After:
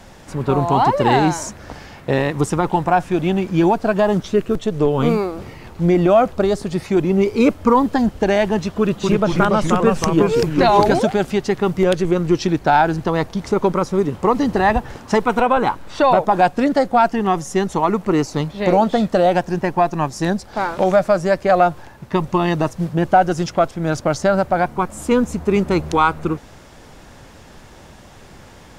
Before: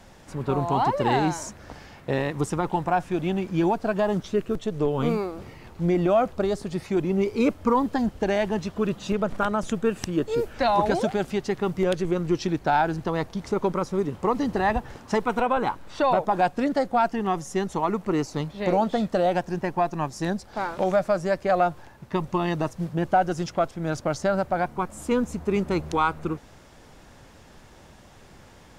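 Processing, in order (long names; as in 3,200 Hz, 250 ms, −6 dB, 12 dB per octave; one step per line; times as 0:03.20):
0:08.80–0:10.99: delay with pitch and tempo change per echo 234 ms, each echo −2 semitones, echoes 2
level +7.5 dB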